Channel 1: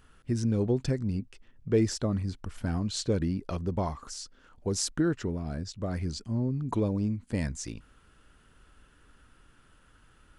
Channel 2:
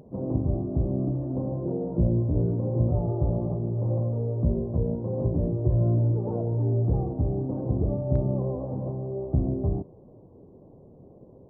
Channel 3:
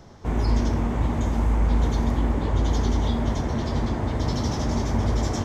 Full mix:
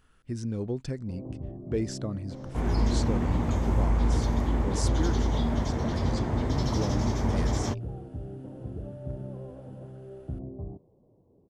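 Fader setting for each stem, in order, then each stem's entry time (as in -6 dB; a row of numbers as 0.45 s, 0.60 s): -5.0 dB, -12.0 dB, -3.5 dB; 0.00 s, 0.95 s, 2.30 s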